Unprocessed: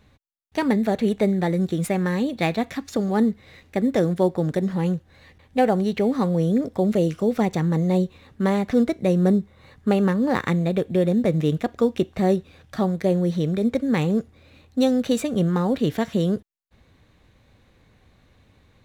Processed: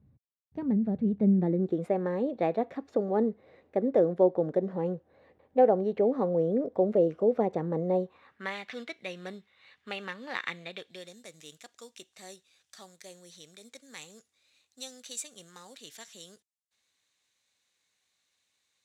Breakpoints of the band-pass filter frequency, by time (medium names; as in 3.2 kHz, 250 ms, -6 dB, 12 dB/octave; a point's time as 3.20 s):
band-pass filter, Q 1.6
1.12 s 140 Hz
1.83 s 520 Hz
7.90 s 520 Hz
8.56 s 2.8 kHz
10.69 s 2.8 kHz
11.19 s 7.4 kHz